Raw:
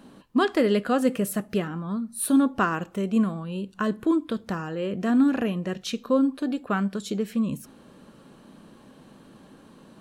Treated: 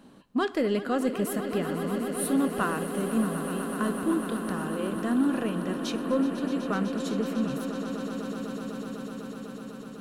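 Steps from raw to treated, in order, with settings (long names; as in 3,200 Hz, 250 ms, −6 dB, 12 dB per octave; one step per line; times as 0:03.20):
in parallel at −4 dB: soft clipping −18.5 dBFS, distortion −14 dB
on the sum: echo that builds up and dies away 125 ms, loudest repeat 8, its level −13.5 dB
level −8 dB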